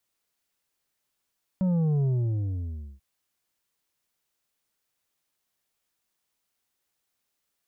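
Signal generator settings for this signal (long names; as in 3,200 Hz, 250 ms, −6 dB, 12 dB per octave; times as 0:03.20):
bass drop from 190 Hz, over 1.39 s, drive 6.5 dB, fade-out 0.96 s, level −22 dB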